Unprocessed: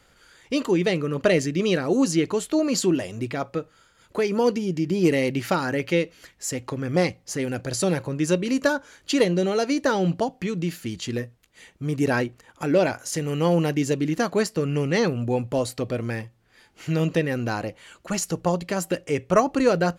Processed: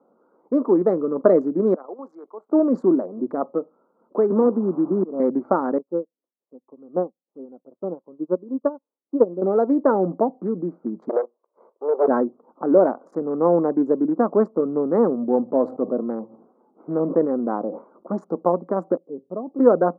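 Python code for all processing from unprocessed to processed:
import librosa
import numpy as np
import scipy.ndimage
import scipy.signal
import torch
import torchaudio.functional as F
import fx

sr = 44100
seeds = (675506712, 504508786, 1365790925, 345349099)

y = fx.chain(x, sr, fx.highpass(hz=950.0, slope=12),
    fx.level_steps(step_db=12),
    fx.band_widen(depth_pct=100), at=(1.74, 2.49))
y = fx.chain(y, sr, fx.delta_mod(bps=16000, step_db=-32.5),
    fx.auto_swell(attack_ms=434.0),
    fx.band_squash(depth_pct=70), at=(4.3, 5.2))
y = fx.chain(y, sr, fx.lowpass(hz=1400.0, slope=24),
    fx.upward_expand(threshold_db=-40.0, expansion=2.5), at=(5.78, 9.42))
y = fx.chain(y, sr, fx.lower_of_two(delay_ms=1.9),
    fx.highpass(hz=410.0, slope=24),
    fx.leveller(passes=2), at=(11.09, 12.08))
y = fx.chain(y, sr, fx.high_shelf(hz=4400.0, db=-11.0),
    fx.sustainer(db_per_s=86.0), at=(14.7, 18.16))
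y = fx.chain(y, sr, fx.bandpass_q(hz=110.0, q=1.0),
    fx.peak_eq(hz=140.0, db=-7.0, octaves=1.9), at=(18.97, 19.59))
y = fx.wiener(y, sr, points=25)
y = scipy.signal.sosfilt(scipy.signal.ellip(3, 1.0, 40, [220.0, 1200.0], 'bandpass', fs=sr, output='sos'), y)
y = y * 10.0 ** (5.5 / 20.0)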